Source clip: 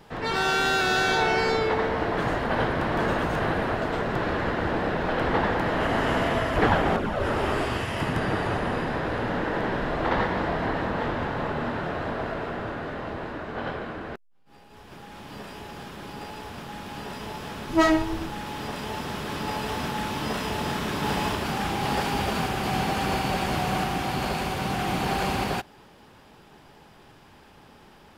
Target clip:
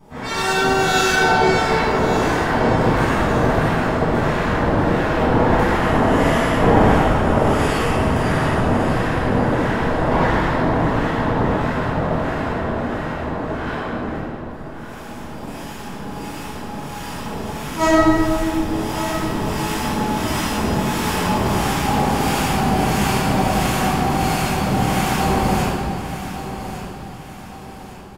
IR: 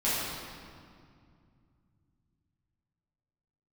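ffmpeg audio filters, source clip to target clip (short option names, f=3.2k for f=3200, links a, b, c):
-filter_complex "[0:a]highshelf=f=5.5k:t=q:w=1.5:g=6,acrossover=split=1000[a][b];[a]aeval=exprs='val(0)*(1-0.7/2+0.7/2*cos(2*PI*1.5*n/s))':c=same[c];[b]aeval=exprs='val(0)*(1-0.7/2-0.7/2*cos(2*PI*1.5*n/s))':c=same[d];[c][d]amix=inputs=2:normalize=0,aecho=1:1:1158|2316|3474|4632:0.266|0.106|0.0426|0.017[e];[1:a]atrim=start_sample=2205[f];[e][f]afir=irnorm=-1:irlink=0,volume=-1dB"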